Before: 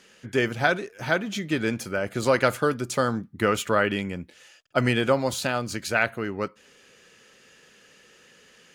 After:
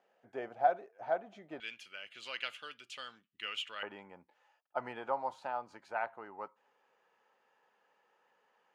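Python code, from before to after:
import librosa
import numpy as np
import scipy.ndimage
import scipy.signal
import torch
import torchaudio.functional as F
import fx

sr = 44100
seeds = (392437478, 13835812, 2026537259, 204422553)

y = fx.bandpass_q(x, sr, hz=fx.steps((0.0, 720.0), (1.6, 2900.0), (3.83, 870.0)), q=6.0)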